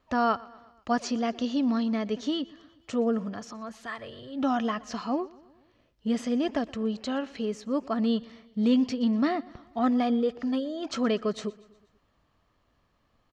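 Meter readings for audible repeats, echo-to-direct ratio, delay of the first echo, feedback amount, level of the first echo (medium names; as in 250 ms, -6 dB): 3, -20.5 dB, 121 ms, 56%, -22.0 dB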